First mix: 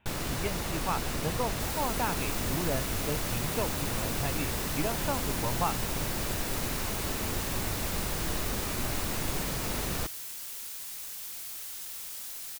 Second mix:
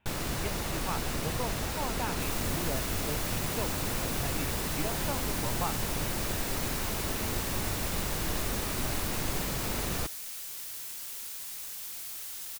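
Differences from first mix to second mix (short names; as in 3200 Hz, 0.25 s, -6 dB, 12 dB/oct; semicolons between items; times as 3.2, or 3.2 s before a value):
speech -4.5 dB; second sound: entry +0.60 s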